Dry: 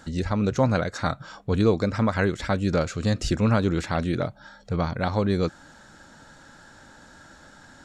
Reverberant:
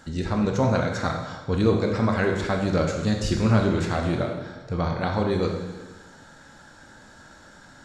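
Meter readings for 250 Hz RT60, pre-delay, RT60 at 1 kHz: 1.3 s, 6 ms, 1.3 s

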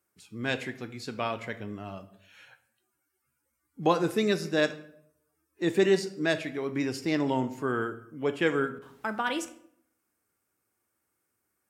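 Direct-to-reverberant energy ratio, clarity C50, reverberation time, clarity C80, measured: 9.0 dB, 13.5 dB, 0.65 s, 17.0 dB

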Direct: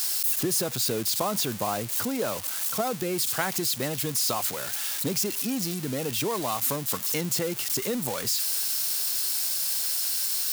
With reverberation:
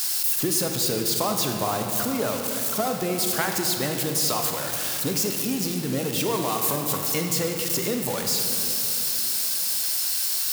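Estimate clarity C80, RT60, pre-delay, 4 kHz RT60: 5.0 dB, 3.0 s, 25 ms, 1.7 s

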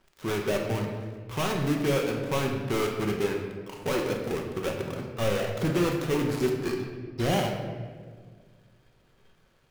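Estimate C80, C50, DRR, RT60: 6.0 dB, 4.0 dB, 1.0 dB, 1.7 s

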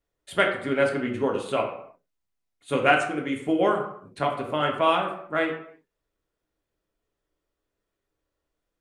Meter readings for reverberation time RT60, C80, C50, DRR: non-exponential decay, 9.5 dB, 6.0 dB, 0.0 dB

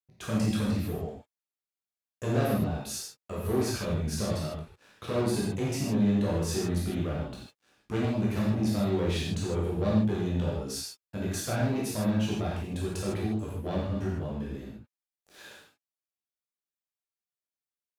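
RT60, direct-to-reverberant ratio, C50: non-exponential decay, −6.0 dB, 0.0 dB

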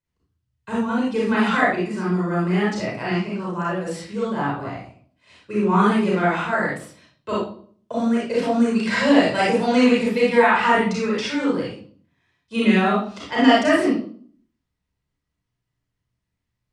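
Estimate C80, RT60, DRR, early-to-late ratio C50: 5.5 dB, 0.50 s, −6.5 dB, −1.0 dB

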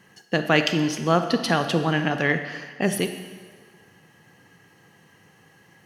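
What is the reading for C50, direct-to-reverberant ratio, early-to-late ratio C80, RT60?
8.5 dB, 7.5 dB, 10.0 dB, 1.6 s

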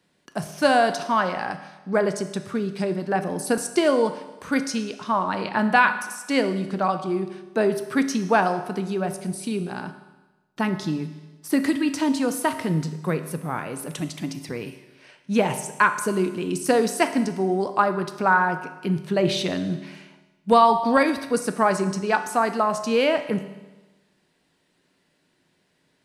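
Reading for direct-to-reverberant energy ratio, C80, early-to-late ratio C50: 8.0 dB, 13.0 dB, 10.5 dB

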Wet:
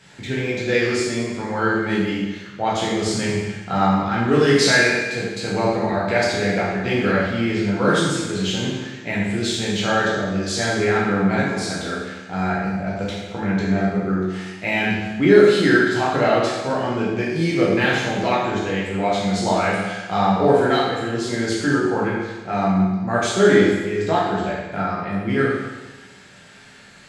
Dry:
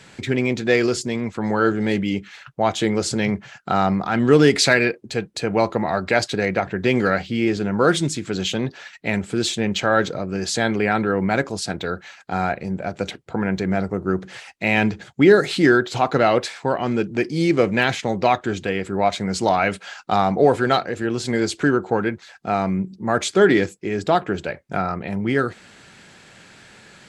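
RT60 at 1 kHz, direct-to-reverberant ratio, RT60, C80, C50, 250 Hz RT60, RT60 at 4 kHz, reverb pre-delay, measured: 1.2 s, −7.0 dB, 1.2 s, 2.5 dB, 0.0 dB, 1.2 s, 1.2 s, 10 ms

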